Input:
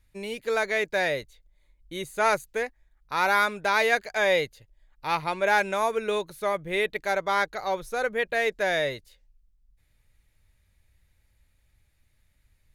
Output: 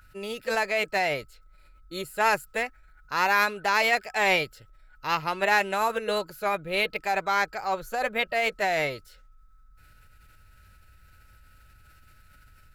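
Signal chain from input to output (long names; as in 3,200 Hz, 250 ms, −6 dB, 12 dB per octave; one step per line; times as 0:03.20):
steady tone 1,300 Hz −51 dBFS
formants moved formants +2 semitones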